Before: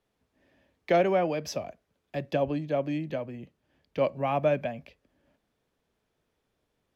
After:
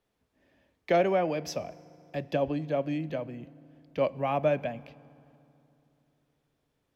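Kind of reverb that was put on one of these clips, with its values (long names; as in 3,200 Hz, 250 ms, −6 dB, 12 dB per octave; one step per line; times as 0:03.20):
feedback delay network reverb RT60 2.9 s, low-frequency decay 1.3×, high-frequency decay 0.65×, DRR 19 dB
level −1 dB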